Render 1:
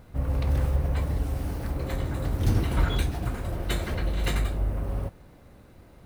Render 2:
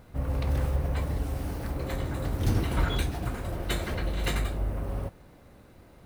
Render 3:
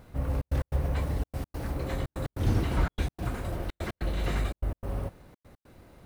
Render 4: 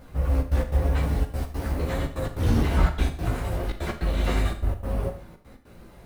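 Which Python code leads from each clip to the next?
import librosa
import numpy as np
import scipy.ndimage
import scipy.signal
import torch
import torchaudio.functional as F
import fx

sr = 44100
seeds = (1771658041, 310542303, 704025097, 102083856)

y1 = fx.low_shelf(x, sr, hz=160.0, db=-3.5)
y2 = fx.step_gate(y1, sr, bpm=146, pattern='xxxx.x.x', floor_db=-60.0, edge_ms=4.5)
y2 = fx.slew_limit(y2, sr, full_power_hz=35.0)
y3 = fx.chorus_voices(y2, sr, voices=6, hz=0.4, base_ms=15, depth_ms=4.0, mix_pct=50)
y3 = fx.rev_schroeder(y3, sr, rt60_s=0.49, comb_ms=27, drr_db=7.5)
y3 = y3 * 10.0 ** (7.5 / 20.0)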